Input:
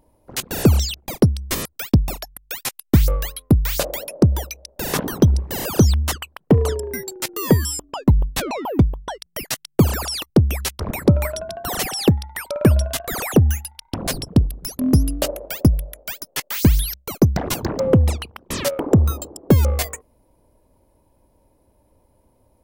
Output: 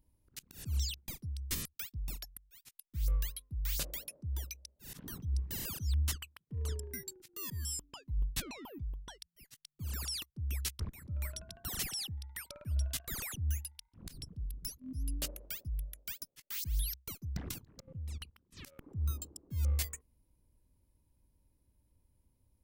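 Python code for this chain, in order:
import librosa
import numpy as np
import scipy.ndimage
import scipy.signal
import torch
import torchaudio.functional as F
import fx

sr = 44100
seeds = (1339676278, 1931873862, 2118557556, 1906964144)

y = fx.auto_swell(x, sr, attack_ms=229.0)
y = fx.level_steps(y, sr, step_db=15, at=(17.51, 18.57))
y = fx.tone_stack(y, sr, knobs='6-0-2')
y = y * librosa.db_to_amplitude(3.0)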